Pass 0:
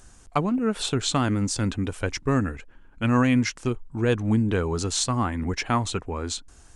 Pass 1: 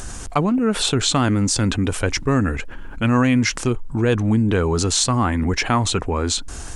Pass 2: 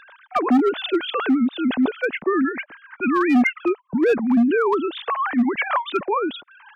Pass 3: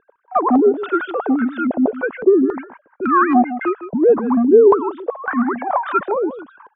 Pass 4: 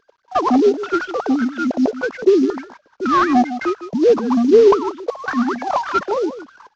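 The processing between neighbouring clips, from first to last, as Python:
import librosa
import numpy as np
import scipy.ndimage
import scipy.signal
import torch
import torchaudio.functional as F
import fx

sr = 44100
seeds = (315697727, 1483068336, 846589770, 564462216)

y1 = fx.env_flatten(x, sr, amount_pct=50)
y1 = y1 * 10.0 ** (3.0 / 20.0)
y2 = fx.sine_speech(y1, sr)
y2 = np.clip(10.0 ** (12.5 / 20.0) * y2, -1.0, 1.0) / 10.0 ** (12.5 / 20.0)
y3 = y2 + 10.0 ** (-12.5 / 20.0) * np.pad(y2, (int(156 * sr / 1000.0), 0))[:len(y2)]
y3 = fx.filter_held_lowpass(y3, sr, hz=3.6, low_hz=440.0, high_hz=1600.0)
y4 = fx.cvsd(y3, sr, bps=32000)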